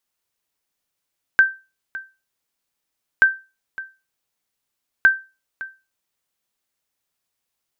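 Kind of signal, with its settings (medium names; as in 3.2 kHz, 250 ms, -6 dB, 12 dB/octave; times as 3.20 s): sonar ping 1.56 kHz, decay 0.28 s, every 1.83 s, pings 3, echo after 0.56 s, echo -18 dB -5 dBFS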